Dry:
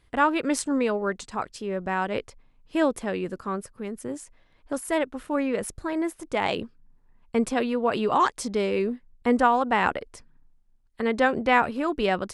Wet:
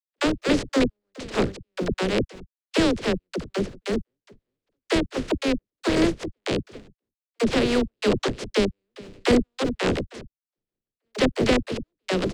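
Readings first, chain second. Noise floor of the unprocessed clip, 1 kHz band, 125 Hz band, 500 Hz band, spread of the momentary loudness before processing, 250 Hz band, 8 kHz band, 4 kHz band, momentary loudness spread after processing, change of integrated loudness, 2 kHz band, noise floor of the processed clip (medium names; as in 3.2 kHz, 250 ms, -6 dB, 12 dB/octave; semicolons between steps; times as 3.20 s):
-61 dBFS, -8.5 dB, +8.5 dB, +1.5 dB, 12 LU, +3.0 dB, -0.5 dB, +7.0 dB, 10 LU, +1.0 dB, -1.5 dB, under -85 dBFS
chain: spectral contrast reduction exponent 0.23; compression 2.5:1, threshold -29 dBFS, peak gain reduction 10.5 dB; distance through air 130 m; delay 395 ms -22 dB; gate -50 dBFS, range -40 dB; resonant low shelf 620 Hz +10.5 dB, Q 1.5; trance gate "..x.xx.x...xxxx" 144 bpm -60 dB; phase dispersion lows, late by 60 ms, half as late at 310 Hz; trim +7 dB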